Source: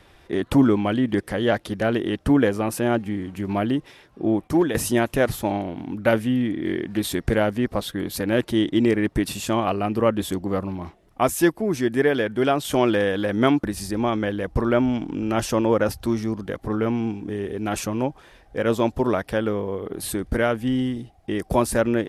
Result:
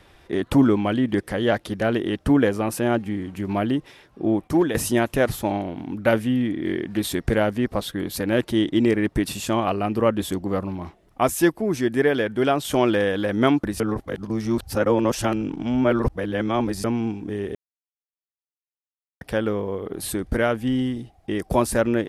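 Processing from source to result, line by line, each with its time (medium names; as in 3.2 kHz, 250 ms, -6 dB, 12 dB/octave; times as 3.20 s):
13.80–16.84 s: reverse
17.55–19.21 s: mute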